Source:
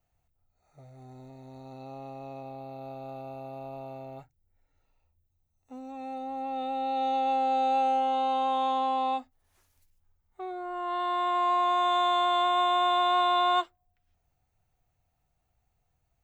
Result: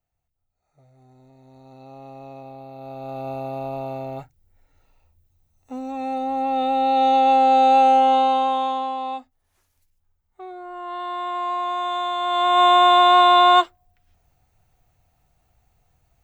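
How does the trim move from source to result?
1.18 s -5 dB
2.18 s +2 dB
2.73 s +2 dB
3.29 s +11 dB
8.13 s +11 dB
8.97 s 0 dB
12.18 s 0 dB
12.65 s +11 dB

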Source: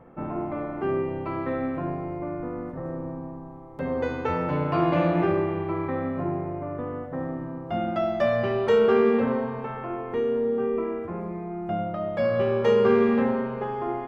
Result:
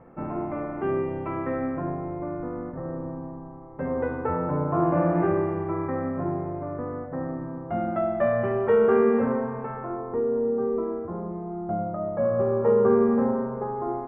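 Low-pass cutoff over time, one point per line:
low-pass 24 dB/octave
1.31 s 2.6 kHz
1.92 s 1.9 kHz
3.94 s 1.9 kHz
4.71 s 1.3 kHz
5.34 s 1.9 kHz
9.71 s 1.9 kHz
10.14 s 1.3 kHz

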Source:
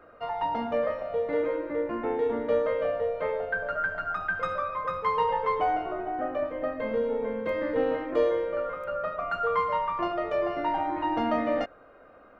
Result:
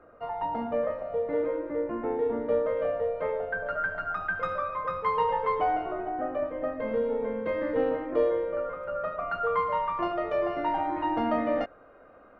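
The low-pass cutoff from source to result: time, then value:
low-pass 6 dB/octave
1.1 kHz
from 2.77 s 1.7 kHz
from 3.66 s 3.1 kHz
from 6.09 s 1.7 kHz
from 6.88 s 2.5 kHz
from 7.89 s 1.4 kHz
from 8.95 s 2.3 kHz
from 9.77 s 3.8 kHz
from 11.12 s 2.5 kHz

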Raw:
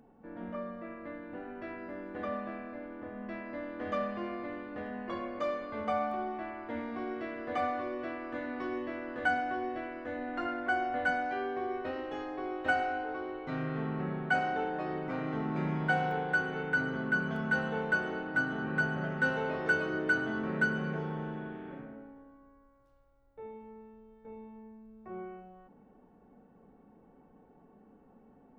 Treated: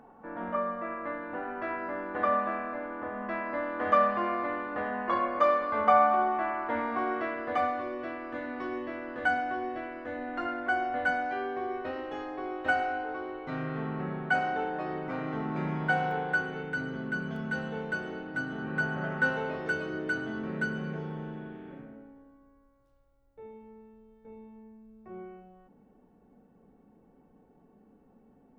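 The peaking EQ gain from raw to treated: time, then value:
peaking EQ 1.1 kHz 2 oct
7.17 s +14 dB
7.75 s +2.5 dB
16.29 s +2.5 dB
16.73 s -5 dB
18.45 s -5 dB
19.13 s +5 dB
19.74 s -4 dB

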